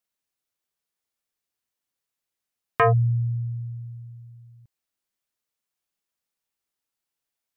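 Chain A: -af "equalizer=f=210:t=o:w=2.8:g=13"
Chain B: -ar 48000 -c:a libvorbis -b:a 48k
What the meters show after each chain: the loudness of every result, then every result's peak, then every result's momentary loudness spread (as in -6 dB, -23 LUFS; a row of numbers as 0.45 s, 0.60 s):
-16.0 LUFS, -24.0 LUFS; -3.0 dBFS, -10.0 dBFS; 20 LU, 20 LU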